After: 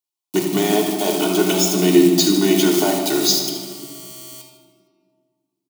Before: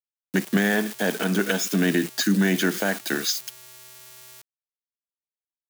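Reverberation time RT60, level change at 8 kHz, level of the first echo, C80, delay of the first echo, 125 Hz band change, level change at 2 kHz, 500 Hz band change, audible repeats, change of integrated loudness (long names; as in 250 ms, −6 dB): 2.0 s, +9.0 dB, −9.5 dB, 5.5 dB, 77 ms, +2.0 dB, −3.5 dB, +9.5 dB, 1, +7.0 dB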